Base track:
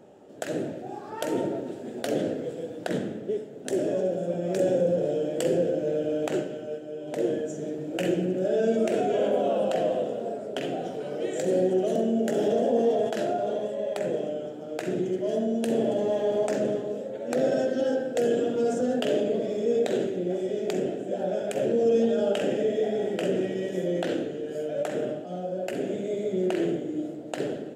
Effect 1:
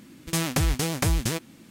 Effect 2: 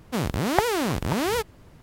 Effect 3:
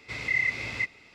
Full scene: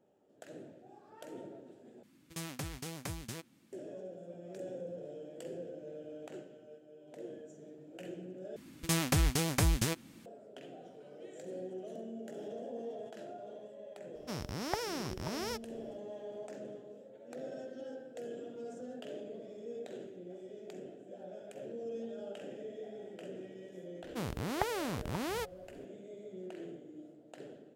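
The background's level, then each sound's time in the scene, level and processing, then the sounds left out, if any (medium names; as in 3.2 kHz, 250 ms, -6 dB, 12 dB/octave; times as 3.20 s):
base track -19.5 dB
2.03 s: replace with 1 -16 dB + high-pass 85 Hz
8.56 s: replace with 1 -5 dB
14.15 s: add 2 -14.5 dB + peaking EQ 5.4 kHz +14 dB 0.27 oct
24.03 s: add 2 -12 dB
not used: 3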